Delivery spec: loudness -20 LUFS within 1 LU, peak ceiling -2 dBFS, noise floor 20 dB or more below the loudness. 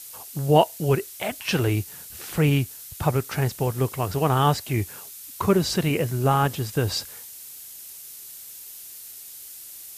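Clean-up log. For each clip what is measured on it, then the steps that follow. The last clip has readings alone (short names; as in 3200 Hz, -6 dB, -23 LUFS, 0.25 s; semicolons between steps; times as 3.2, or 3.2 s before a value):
noise floor -42 dBFS; noise floor target -44 dBFS; loudness -24.0 LUFS; peak -5.0 dBFS; loudness target -20.0 LUFS
-> noise print and reduce 6 dB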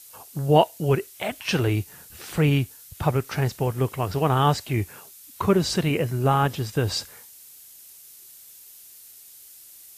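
noise floor -48 dBFS; loudness -24.0 LUFS; peak -5.0 dBFS; loudness target -20.0 LUFS
-> gain +4 dB; limiter -2 dBFS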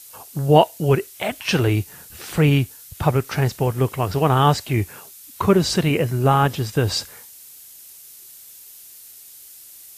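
loudness -20.0 LUFS; peak -2.0 dBFS; noise floor -44 dBFS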